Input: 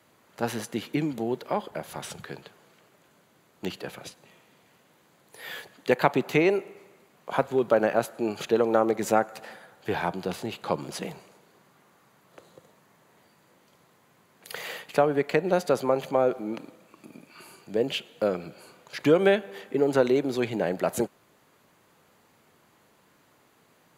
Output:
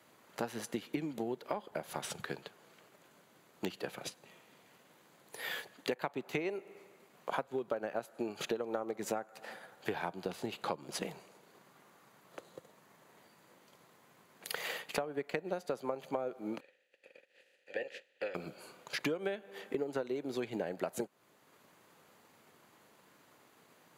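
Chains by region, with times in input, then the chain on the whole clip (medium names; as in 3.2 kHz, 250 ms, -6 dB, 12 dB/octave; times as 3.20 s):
16.59–18.34 s: spectral peaks clipped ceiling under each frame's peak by 26 dB + vowel filter e + band-stop 650 Hz, Q 7.1
whole clip: high-pass 160 Hz 6 dB/octave; transient shaper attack +4 dB, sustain -3 dB; compression 6:1, threshold -32 dBFS; trim -1.5 dB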